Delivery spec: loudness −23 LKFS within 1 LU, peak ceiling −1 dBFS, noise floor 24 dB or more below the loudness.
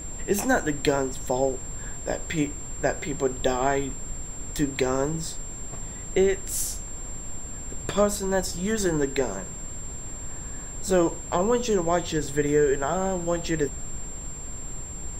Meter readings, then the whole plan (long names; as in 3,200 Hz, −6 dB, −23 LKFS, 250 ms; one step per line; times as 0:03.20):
interfering tone 7,400 Hz; level of the tone −37 dBFS; background noise floor −37 dBFS; target noise floor −51 dBFS; integrated loudness −27.0 LKFS; sample peak −8.5 dBFS; target loudness −23.0 LKFS
→ notch filter 7,400 Hz, Q 30
noise reduction from a noise print 14 dB
level +4 dB